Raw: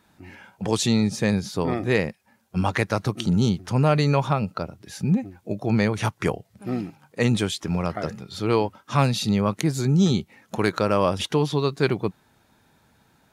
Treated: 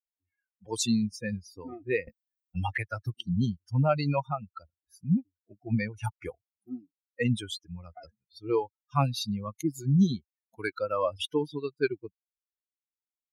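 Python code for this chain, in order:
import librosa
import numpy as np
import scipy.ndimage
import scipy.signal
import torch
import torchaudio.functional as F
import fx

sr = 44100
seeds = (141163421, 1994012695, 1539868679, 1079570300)

y = fx.bin_expand(x, sr, power=3.0)
y = fx.band_squash(y, sr, depth_pct=70, at=(2.07, 3.14))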